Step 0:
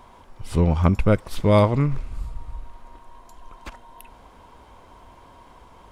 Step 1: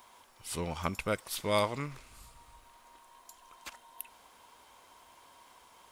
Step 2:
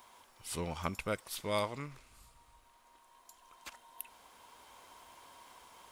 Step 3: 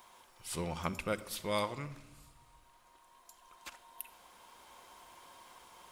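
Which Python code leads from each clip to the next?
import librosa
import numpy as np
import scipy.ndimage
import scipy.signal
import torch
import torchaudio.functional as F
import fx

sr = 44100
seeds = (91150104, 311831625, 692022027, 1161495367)

y1 = fx.tilt_eq(x, sr, slope=4.0)
y1 = y1 * 10.0 ** (-8.5 / 20.0)
y2 = fx.rider(y1, sr, range_db=4, speed_s=2.0)
y2 = y2 * 10.0 ** (-2.5 / 20.0)
y3 = fx.room_shoebox(y2, sr, seeds[0], volume_m3=3900.0, walls='furnished', distance_m=0.9)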